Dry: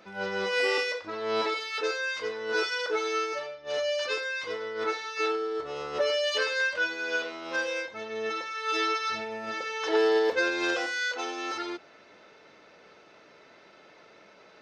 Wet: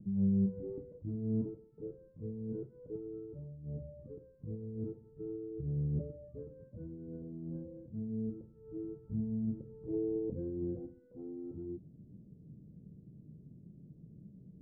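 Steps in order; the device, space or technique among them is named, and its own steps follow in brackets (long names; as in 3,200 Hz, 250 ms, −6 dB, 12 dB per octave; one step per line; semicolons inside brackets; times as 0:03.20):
the neighbour's flat through the wall (low-pass filter 180 Hz 24 dB per octave; parametric band 140 Hz +5.5 dB 0.74 octaves)
level +17 dB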